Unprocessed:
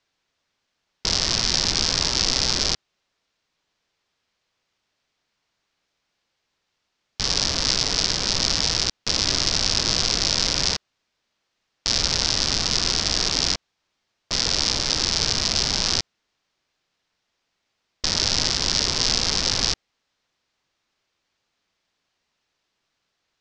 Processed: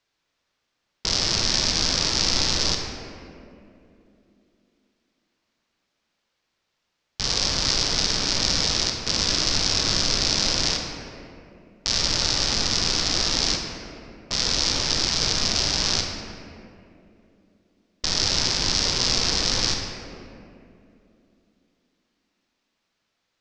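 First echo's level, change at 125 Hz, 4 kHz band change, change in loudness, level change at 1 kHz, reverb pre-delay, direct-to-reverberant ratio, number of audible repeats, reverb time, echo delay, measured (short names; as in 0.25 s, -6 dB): none, +0.5 dB, -1.0 dB, -0.5 dB, 0.0 dB, 31 ms, 2.0 dB, none, 2.7 s, none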